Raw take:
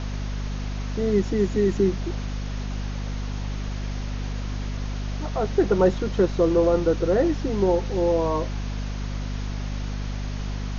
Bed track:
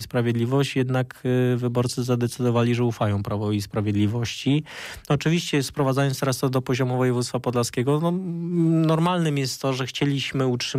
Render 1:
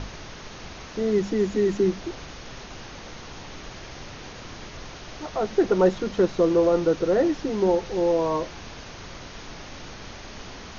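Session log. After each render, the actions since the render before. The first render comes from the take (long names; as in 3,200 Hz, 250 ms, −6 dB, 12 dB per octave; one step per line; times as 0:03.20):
mains-hum notches 50/100/150/200/250 Hz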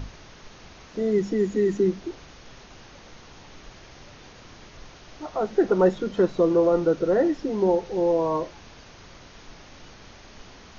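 noise reduction from a noise print 7 dB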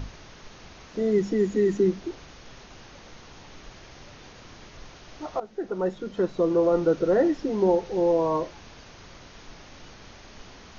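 0:05.40–0:06.96: fade in, from −16 dB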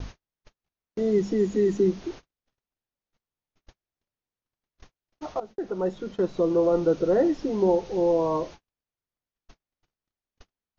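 noise gate −39 dBFS, range −49 dB
dynamic equaliser 1,700 Hz, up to −5 dB, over −43 dBFS, Q 1.3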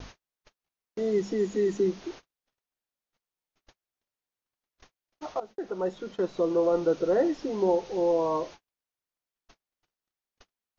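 low-shelf EQ 250 Hz −10.5 dB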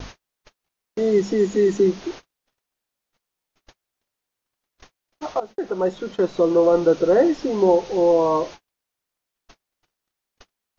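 level +8 dB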